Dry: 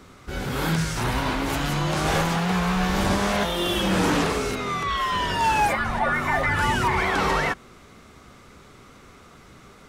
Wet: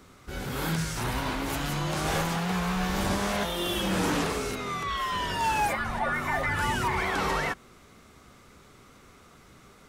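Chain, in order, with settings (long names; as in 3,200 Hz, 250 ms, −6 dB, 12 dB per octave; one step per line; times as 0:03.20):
high-shelf EQ 8,900 Hz +7 dB
level −5.5 dB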